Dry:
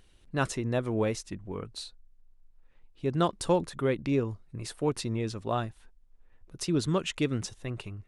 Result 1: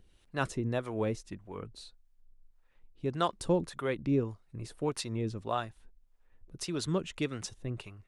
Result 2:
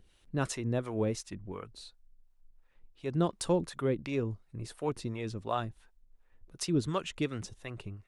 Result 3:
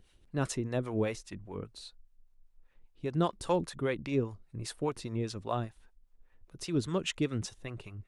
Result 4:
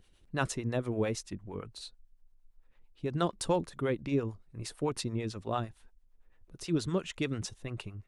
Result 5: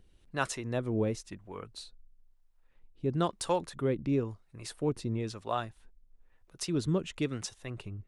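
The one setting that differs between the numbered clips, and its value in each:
two-band tremolo in antiphase, speed: 1.7, 2.8, 5, 8.9, 1 Hertz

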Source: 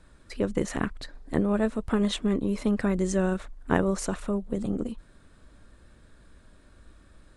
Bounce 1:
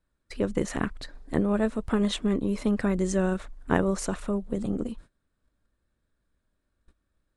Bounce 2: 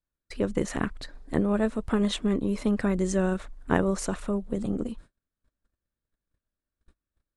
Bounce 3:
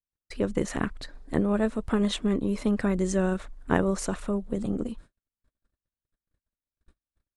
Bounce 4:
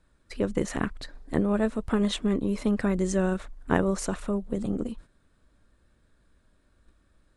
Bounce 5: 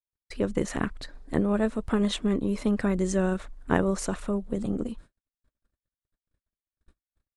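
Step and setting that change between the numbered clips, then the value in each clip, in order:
noise gate, range: −22, −35, −47, −10, −59 decibels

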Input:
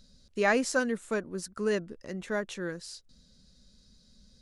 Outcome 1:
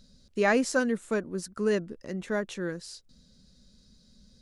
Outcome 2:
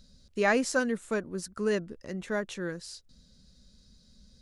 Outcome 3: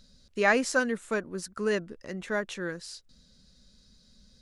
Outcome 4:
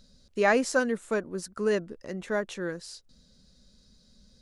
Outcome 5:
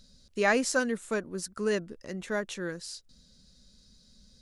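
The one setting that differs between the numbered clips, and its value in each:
parametric band, centre frequency: 230, 73, 1,800, 640, 15,000 Hertz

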